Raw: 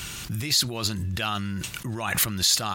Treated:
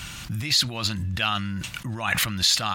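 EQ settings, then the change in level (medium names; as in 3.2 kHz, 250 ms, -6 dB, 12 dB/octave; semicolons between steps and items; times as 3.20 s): dynamic bell 2.7 kHz, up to +6 dB, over -36 dBFS, Q 0.74; peaking EQ 400 Hz -12 dB 0.39 oct; treble shelf 5.6 kHz -8 dB; +1.0 dB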